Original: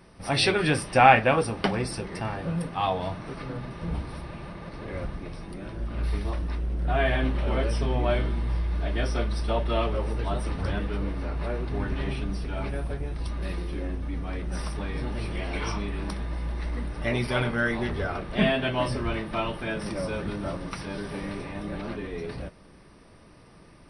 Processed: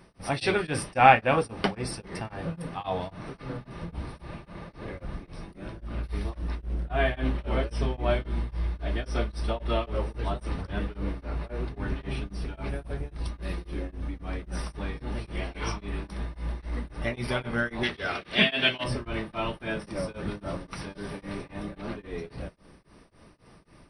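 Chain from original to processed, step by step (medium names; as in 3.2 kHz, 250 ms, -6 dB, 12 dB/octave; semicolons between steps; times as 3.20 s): 17.83–18.84 s: frequency weighting D; tremolo of two beating tones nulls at 3.7 Hz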